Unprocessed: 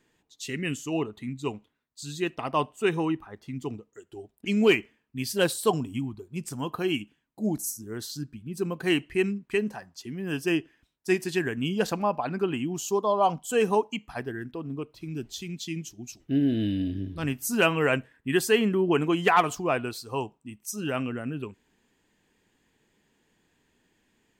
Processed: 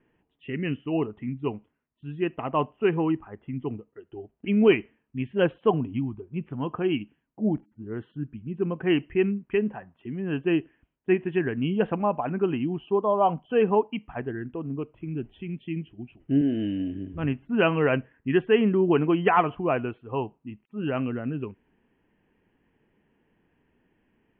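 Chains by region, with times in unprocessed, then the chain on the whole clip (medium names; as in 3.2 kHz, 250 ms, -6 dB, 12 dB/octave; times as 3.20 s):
16.41–17.14 s: high-pass 270 Hz 6 dB/octave + treble shelf 7 kHz +11 dB
whole clip: steep low-pass 3.1 kHz 96 dB/octave; tilt shelf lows +4 dB, about 1.3 kHz; trim -1 dB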